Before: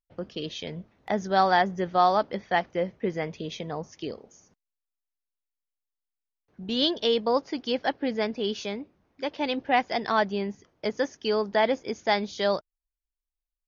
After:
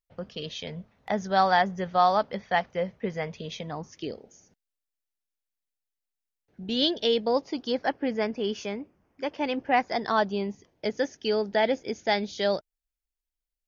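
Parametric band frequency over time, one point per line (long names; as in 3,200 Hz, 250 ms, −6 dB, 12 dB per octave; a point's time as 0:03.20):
parametric band −12.5 dB 0.32 octaves
0:03.60 330 Hz
0:04.09 1,100 Hz
0:07.30 1,100 Hz
0:07.92 3,900 Hz
0:09.64 3,900 Hz
0:10.88 1,100 Hz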